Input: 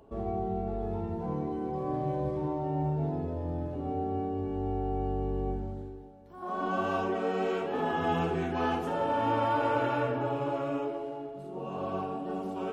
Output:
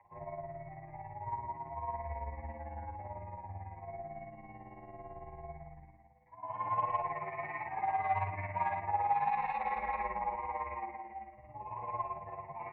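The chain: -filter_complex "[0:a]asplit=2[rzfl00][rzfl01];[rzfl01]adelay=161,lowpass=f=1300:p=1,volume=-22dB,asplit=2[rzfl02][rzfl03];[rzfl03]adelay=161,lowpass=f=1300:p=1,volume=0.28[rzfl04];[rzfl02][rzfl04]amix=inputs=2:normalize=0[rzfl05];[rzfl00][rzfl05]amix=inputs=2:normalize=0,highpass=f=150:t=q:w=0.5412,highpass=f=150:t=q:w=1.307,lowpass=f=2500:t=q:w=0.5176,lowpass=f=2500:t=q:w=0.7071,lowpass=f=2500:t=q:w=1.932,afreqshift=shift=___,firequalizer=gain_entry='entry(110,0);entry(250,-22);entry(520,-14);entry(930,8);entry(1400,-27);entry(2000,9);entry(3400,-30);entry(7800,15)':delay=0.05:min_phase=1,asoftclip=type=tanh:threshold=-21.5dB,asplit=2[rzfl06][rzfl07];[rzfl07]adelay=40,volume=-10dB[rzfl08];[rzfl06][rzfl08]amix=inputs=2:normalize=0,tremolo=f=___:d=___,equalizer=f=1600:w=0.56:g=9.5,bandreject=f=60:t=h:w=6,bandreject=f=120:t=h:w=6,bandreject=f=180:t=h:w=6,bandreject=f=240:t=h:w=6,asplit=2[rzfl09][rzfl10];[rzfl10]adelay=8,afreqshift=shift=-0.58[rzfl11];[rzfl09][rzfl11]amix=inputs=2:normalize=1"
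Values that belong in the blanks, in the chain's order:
-72, 18, 0.65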